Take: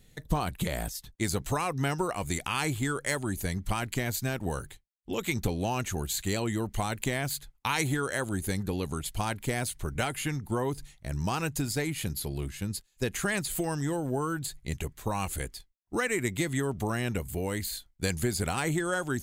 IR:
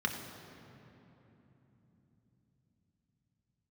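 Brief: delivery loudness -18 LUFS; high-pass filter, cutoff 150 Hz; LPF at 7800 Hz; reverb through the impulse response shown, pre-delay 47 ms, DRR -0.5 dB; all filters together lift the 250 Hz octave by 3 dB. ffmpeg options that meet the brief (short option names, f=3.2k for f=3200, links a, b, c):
-filter_complex "[0:a]highpass=150,lowpass=7.8k,equalizer=f=250:t=o:g=5,asplit=2[a][b];[1:a]atrim=start_sample=2205,adelay=47[c];[b][c]afir=irnorm=-1:irlink=0,volume=-6dB[d];[a][d]amix=inputs=2:normalize=0,volume=9dB"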